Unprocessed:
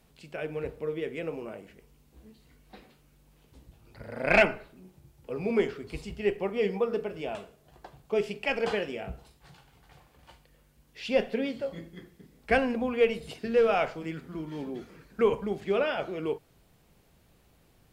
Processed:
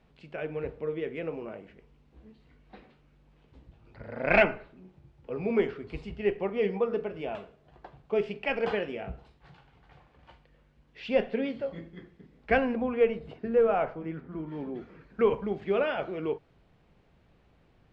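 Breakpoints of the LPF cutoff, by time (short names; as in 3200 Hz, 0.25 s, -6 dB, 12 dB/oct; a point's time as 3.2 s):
12.55 s 2900 Hz
13.35 s 1400 Hz
14 s 1400 Hz
15.23 s 2900 Hz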